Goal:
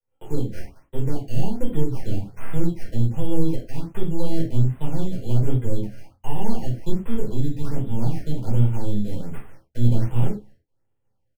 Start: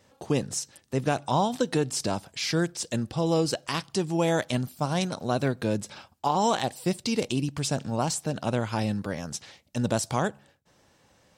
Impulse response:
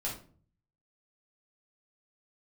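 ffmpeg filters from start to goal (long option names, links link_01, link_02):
-filter_complex "[0:a]aeval=exprs='if(lt(val(0),0),0.447*val(0),val(0))':channel_layout=same,equalizer=frequency=3200:width=0.37:gain=-8,acrossover=split=310[link_01][link_02];[link_01]dynaudnorm=framelen=800:gausssize=3:maxgain=4dB[link_03];[link_03][link_02]amix=inputs=2:normalize=0,agate=range=-33dB:threshold=-50dB:ratio=3:detection=peak,aecho=1:1:2.3:0.38,acrusher=samples=12:mix=1:aa=0.000001,acrossover=split=360[link_04][link_05];[link_05]acompressor=threshold=-45dB:ratio=2[link_06];[link_04][link_06]amix=inputs=2:normalize=0[link_07];[1:a]atrim=start_sample=2205,afade=type=out:start_time=0.17:duration=0.01,atrim=end_sample=7938[link_08];[link_07][link_08]afir=irnorm=-1:irlink=0,afftfilt=real='re*(1-between(b*sr/1024,990*pow(5500/990,0.5+0.5*sin(2*PI*1.3*pts/sr))/1.41,990*pow(5500/990,0.5+0.5*sin(2*PI*1.3*pts/sr))*1.41))':imag='im*(1-between(b*sr/1024,990*pow(5500/990,0.5+0.5*sin(2*PI*1.3*pts/sr))/1.41,990*pow(5500/990,0.5+0.5*sin(2*PI*1.3*pts/sr))*1.41))':win_size=1024:overlap=0.75"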